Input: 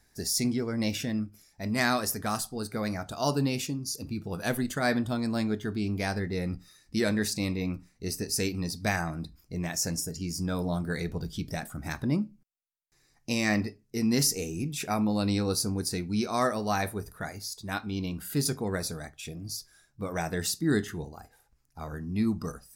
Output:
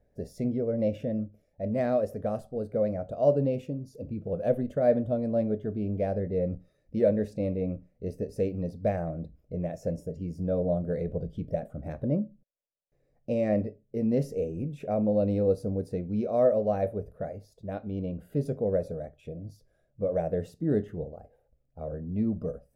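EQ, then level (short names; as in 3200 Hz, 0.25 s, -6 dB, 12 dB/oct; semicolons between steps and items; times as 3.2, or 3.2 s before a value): EQ curve 180 Hz 0 dB, 360 Hz -3 dB, 560 Hz +14 dB, 900 Hz -14 dB, 1400 Hz -16 dB, 2900 Hz -16 dB, 4600 Hz -28 dB; 0.0 dB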